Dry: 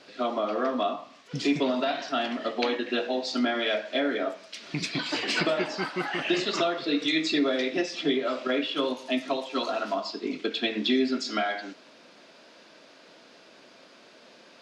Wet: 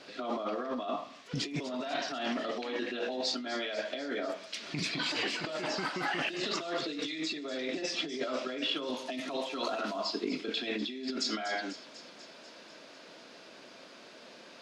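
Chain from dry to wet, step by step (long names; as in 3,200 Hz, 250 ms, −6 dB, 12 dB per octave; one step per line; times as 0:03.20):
compressor whose output falls as the input rises −32 dBFS, ratio −1
delay with a high-pass on its return 246 ms, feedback 68%, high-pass 5,000 Hz, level −9 dB
level −3 dB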